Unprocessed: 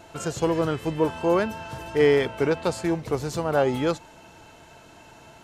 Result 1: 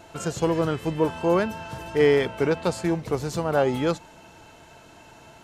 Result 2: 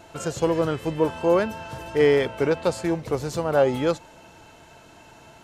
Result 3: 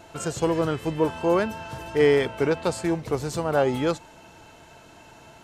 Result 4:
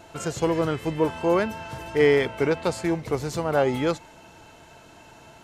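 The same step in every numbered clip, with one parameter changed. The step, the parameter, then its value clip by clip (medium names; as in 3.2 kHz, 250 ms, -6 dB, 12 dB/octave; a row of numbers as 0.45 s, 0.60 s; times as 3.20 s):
dynamic bell, frequency: 180 Hz, 540 Hz, 8.2 kHz, 2.1 kHz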